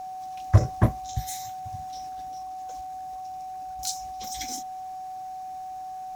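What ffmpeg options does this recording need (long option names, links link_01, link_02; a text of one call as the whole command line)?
ffmpeg -i in.wav -af "adeclick=threshold=4,bandreject=frequency=750:width=30" out.wav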